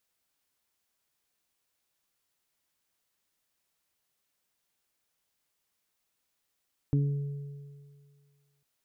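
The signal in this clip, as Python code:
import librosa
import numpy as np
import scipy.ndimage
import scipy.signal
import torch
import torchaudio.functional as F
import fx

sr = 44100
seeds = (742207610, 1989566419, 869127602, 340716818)

y = fx.additive(sr, length_s=1.7, hz=142.0, level_db=-21.5, upper_db=(-5.5, -17), decay_s=1.92, upper_decays_s=(0.47, 2.14))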